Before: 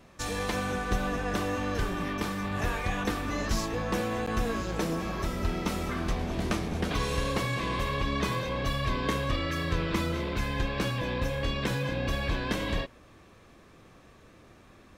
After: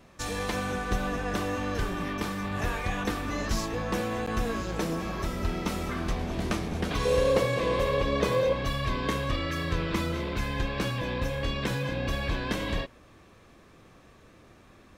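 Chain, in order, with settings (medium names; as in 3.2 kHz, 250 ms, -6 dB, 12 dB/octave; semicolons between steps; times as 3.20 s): 7.05–8.53 s: peaking EQ 510 Hz +13.5 dB 0.54 oct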